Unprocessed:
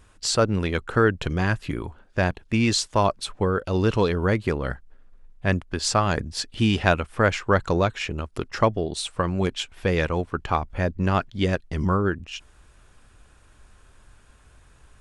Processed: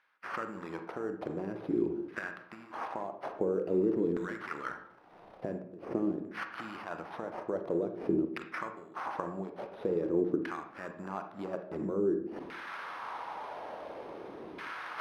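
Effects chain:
camcorder AGC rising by 45 dB per second
first-order pre-emphasis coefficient 0.9
gain on a spectral selection 0:04.41–0:04.69, 1,200–9,600 Hz +11 dB
high shelf with overshoot 5,000 Hz +10 dB, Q 1.5
reversed playback
downward compressor 20 to 1, threshold −32 dBFS, peak gain reduction 25 dB
reversed playback
transient designer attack +3 dB, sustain +8 dB
hollow resonant body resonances 200/310 Hz, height 17 dB, ringing for 30 ms
sample-rate reduction 7,400 Hz, jitter 0%
auto-filter band-pass saw down 0.48 Hz 300–1,700 Hz
on a send: convolution reverb RT60 0.65 s, pre-delay 35 ms, DRR 6.5 dB

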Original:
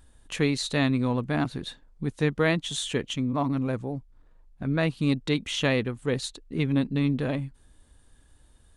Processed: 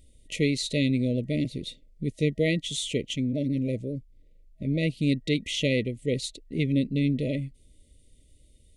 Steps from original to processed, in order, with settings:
brick-wall band-stop 640–1,900 Hz

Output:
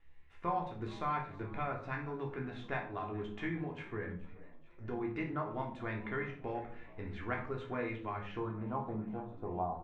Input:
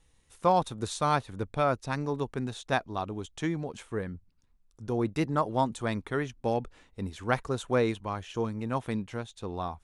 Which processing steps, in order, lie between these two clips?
downward compressor 2.5 to 1, threshold −35 dBFS, peak gain reduction 11 dB
resonators tuned to a chord C#2 minor, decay 0.21 s
low-pass filter sweep 2,100 Hz → 770 Hz, 0:08.26–0:08.85
echo with shifted repeats 427 ms, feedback 60%, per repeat +65 Hz, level −21 dB
convolution reverb RT60 0.50 s, pre-delay 3 ms, DRR 1.5 dB
level +3 dB

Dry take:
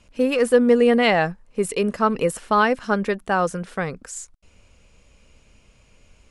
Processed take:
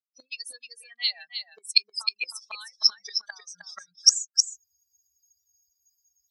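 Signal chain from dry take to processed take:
spectral dynamics exaggerated over time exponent 3
camcorder AGC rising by 38 dB per second
gate with flip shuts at −19 dBFS, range −25 dB
in parallel at +2 dB: downward compressor, threshold −44 dBFS, peak gain reduction 18 dB
on the sum: noise reduction from a noise print of the clip's start 17 dB
four-pole ladder band-pass 4,600 Hz, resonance 75%
on a send: single-tap delay 311 ms −8.5 dB
on the sum: boost into a limiter +31 dB
level −1 dB

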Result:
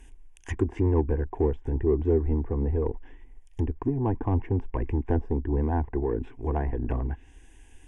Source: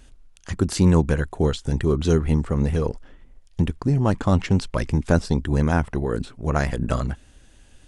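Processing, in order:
treble cut that deepens with the level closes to 840 Hz, closed at −19 dBFS
in parallel at −6 dB: soft clipping −20 dBFS, distortion −8 dB
on the sum: phaser with its sweep stopped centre 870 Hz, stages 8
level −2.5 dB

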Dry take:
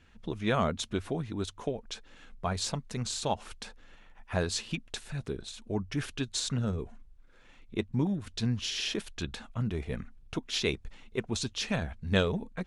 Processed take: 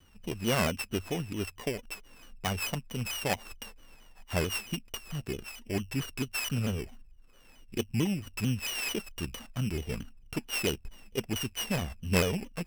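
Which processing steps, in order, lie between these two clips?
samples sorted by size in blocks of 16 samples
pitch modulation by a square or saw wave saw down 4.5 Hz, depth 160 cents

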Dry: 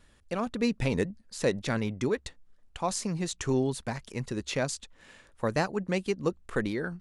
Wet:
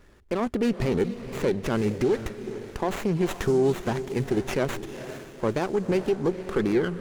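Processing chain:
parametric band 380 Hz +10 dB 0.38 octaves
brickwall limiter −21 dBFS, peak gain reduction 9.5 dB
feedback delay with all-pass diffusion 464 ms, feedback 42%, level −11.5 dB
windowed peak hold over 9 samples
level +6 dB

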